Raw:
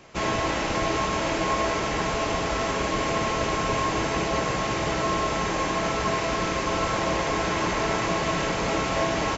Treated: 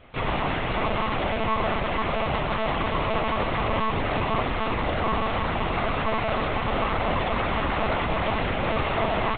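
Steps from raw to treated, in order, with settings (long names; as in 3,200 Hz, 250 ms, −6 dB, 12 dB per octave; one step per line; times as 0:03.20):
feedback echo with a high-pass in the loop 486 ms, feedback 72%, high-pass 290 Hz, level −10.5 dB
one-pitch LPC vocoder at 8 kHz 220 Hz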